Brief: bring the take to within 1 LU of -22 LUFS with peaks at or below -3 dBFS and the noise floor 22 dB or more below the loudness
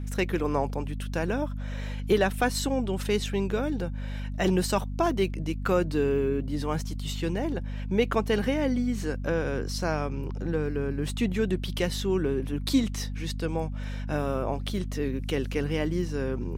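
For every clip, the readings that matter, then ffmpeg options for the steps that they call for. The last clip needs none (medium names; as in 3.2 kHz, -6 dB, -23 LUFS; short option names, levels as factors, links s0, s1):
hum 50 Hz; highest harmonic 250 Hz; hum level -30 dBFS; loudness -28.5 LUFS; peak level -11.5 dBFS; loudness target -22.0 LUFS
-> -af "bandreject=f=50:t=h:w=4,bandreject=f=100:t=h:w=4,bandreject=f=150:t=h:w=4,bandreject=f=200:t=h:w=4,bandreject=f=250:t=h:w=4"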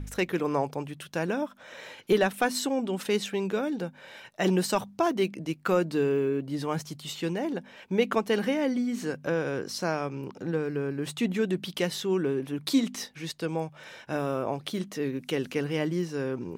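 hum not found; loudness -29.5 LUFS; peak level -12.0 dBFS; loudness target -22.0 LUFS
-> -af "volume=2.37"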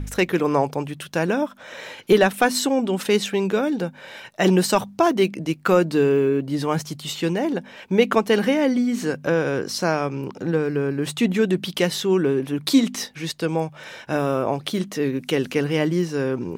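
loudness -22.0 LUFS; peak level -4.5 dBFS; noise floor -45 dBFS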